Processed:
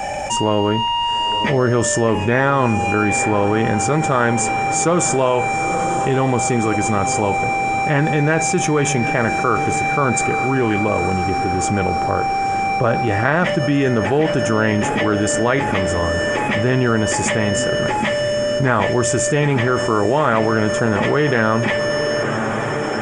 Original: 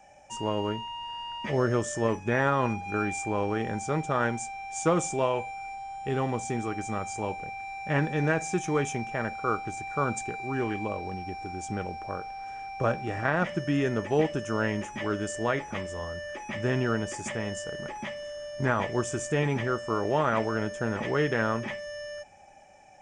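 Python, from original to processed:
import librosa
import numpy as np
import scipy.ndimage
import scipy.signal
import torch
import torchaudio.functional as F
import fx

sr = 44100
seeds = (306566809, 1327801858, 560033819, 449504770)

y = fx.notch(x, sr, hz=5900.0, q=16.0)
y = fx.echo_diffused(y, sr, ms=918, feedback_pct=62, wet_db=-16.0)
y = fx.env_flatten(y, sr, amount_pct=70)
y = F.gain(torch.from_numpy(y), 6.0).numpy()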